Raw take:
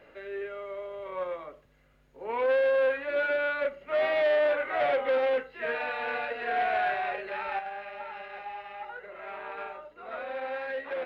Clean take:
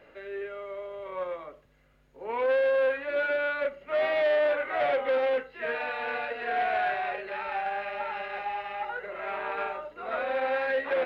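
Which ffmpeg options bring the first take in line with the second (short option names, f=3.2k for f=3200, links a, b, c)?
-af "asetnsamples=n=441:p=0,asendcmd='7.59 volume volume 6.5dB',volume=0dB"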